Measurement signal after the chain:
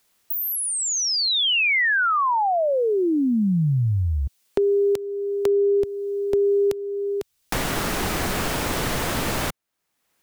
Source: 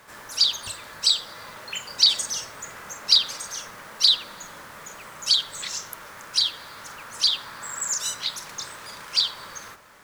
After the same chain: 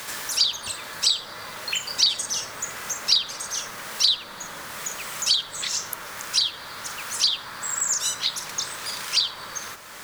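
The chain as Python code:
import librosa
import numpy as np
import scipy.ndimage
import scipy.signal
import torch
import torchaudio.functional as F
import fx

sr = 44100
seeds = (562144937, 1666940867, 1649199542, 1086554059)

y = fx.band_squash(x, sr, depth_pct=70)
y = y * librosa.db_to_amplitude(1.5)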